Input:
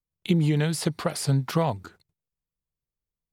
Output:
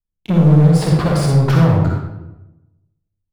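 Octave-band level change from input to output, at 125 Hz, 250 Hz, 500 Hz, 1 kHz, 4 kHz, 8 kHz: +14.0, +12.0, +9.0, +8.0, +3.5, +1.5 decibels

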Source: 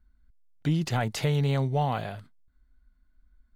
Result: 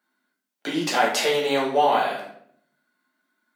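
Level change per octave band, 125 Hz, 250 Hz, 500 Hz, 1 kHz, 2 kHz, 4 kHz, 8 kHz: −17.0, +1.0, +10.0, +11.0, +11.0, +11.0, +10.5 decibels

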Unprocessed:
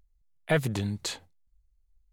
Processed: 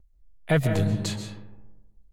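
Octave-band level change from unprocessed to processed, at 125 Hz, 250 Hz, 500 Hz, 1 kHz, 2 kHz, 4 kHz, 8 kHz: +7.0, +5.5, +3.0, +2.0, +1.0, +0.5, +0.5 decibels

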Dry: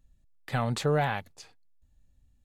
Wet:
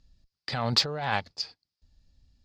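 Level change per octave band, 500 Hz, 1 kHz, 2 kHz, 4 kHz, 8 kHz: −5.0, +0.5, +1.5, +13.5, +3.5 decibels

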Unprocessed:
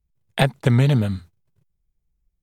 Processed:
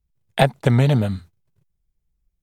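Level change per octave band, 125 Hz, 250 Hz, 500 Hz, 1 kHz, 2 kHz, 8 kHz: 0.0 dB, +0.5 dB, +3.5 dB, +4.5 dB, +0.5 dB, can't be measured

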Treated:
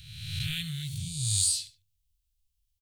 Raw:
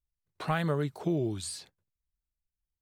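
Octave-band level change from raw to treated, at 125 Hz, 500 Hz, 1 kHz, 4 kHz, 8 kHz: +1.0 dB, below −35 dB, below −25 dB, +12.5 dB, +15.5 dB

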